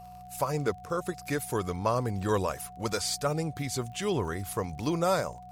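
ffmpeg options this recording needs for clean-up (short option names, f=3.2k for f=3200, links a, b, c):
-af "adeclick=t=4,bandreject=f=60.8:t=h:w=4,bandreject=f=121.6:t=h:w=4,bandreject=f=182.4:t=h:w=4,bandreject=f=730:w=30"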